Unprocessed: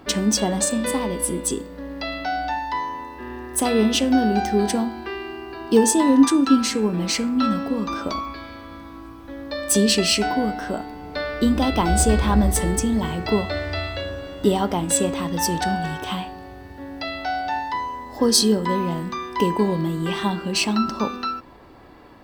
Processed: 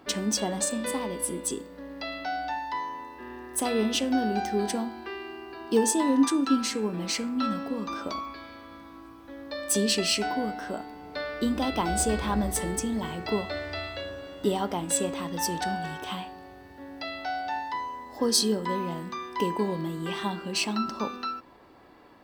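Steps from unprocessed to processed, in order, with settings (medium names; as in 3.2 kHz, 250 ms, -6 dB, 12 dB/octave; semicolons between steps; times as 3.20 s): bass shelf 120 Hz -10.5 dB; trim -6 dB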